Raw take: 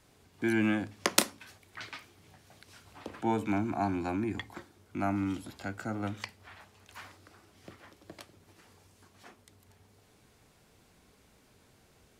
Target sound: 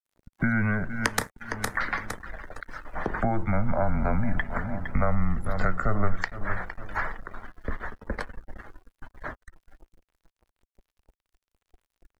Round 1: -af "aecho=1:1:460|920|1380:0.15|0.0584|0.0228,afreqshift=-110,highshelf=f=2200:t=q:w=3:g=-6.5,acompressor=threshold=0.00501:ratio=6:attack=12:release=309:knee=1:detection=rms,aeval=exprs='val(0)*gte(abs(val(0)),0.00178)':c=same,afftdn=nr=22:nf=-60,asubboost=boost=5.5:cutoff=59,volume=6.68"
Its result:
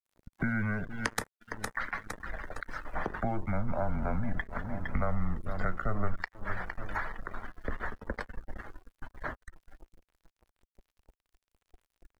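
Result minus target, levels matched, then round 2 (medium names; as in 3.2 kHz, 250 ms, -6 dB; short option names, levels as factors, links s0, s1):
compression: peak gain reduction +6.5 dB
-af "aecho=1:1:460|920|1380:0.15|0.0584|0.0228,afreqshift=-110,highshelf=f=2200:t=q:w=3:g=-6.5,acompressor=threshold=0.0119:ratio=6:attack=12:release=309:knee=1:detection=rms,aeval=exprs='val(0)*gte(abs(val(0)),0.00178)':c=same,afftdn=nr=22:nf=-60,asubboost=boost=5.5:cutoff=59,volume=6.68"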